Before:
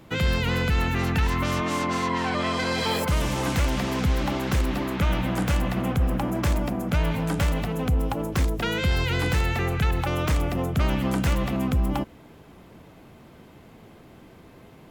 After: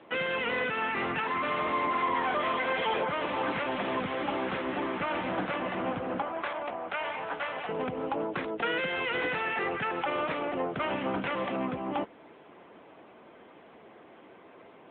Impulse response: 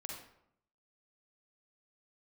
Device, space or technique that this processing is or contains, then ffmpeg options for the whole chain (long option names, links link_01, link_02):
telephone: -filter_complex "[0:a]asettb=1/sr,asplit=3[link_01][link_02][link_03];[link_01]atrim=end=6.224[link_04];[link_02]atrim=start=6.22:end=7.69,asetpts=PTS-STARTPTS,afade=type=in:duration=0.004:curve=qsin,afade=type=out:start_time=1.466:duration=0.004:curve=qsin,acrossover=split=550 5900:gain=0.224 1 0.158[link_05][link_06][link_07];[link_05][link_06][link_07]amix=inputs=3:normalize=0[link_08];[link_03]atrim=start=7.686[link_09];[link_04][link_08]acrossfade=duration=0.004:curve1=hsin:curve2=qsin[link_10];[link_10][link_09]acrossfade=duration=0.004:curve1=qsin:curve2=hsin,highpass=400,lowpass=3100,asoftclip=type=tanh:threshold=-23.5dB,volume=2.5dB" -ar 8000 -c:a libopencore_amrnb -b:a 10200